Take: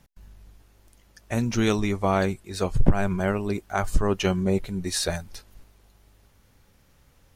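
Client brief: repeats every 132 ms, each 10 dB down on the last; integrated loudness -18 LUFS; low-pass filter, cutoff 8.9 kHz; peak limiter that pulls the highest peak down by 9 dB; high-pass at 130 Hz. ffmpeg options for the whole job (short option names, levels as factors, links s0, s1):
-af "highpass=130,lowpass=8900,alimiter=limit=0.2:level=0:latency=1,aecho=1:1:132|264|396|528:0.316|0.101|0.0324|0.0104,volume=2.99"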